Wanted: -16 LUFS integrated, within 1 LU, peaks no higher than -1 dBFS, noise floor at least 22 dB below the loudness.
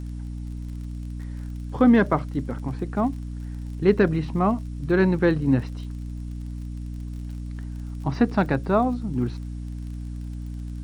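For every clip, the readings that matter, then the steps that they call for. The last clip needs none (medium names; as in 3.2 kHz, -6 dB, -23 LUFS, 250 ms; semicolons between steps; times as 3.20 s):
tick rate 37 per s; hum 60 Hz; highest harmonic 300 Hz; hum level -30 dBFS; loudness -25.5 LUFS; peak level -6.0 dBFS; loudness target -16.0 LUFS
-> de-click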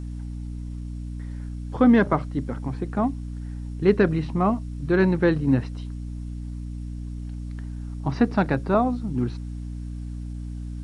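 tick rate 0 per s; hum 60 Hz; highest harmonic 300 Hz; hum level -30 dBFS
-> hum notches 60/120/180/240/300 Hz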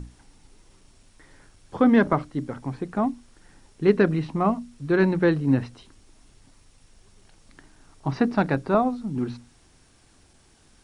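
hum not found; loudness -23.5 LUFS; peak level -6.0 dBFS; loudness target -16.0 LUFS
-> trim +7.5 dB; peak limiter -1 dBFS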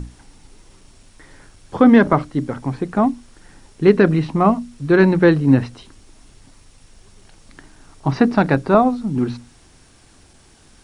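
loudness -16.5 LUFS; peak level -1.0 dBFS; noise floor -51 dBFS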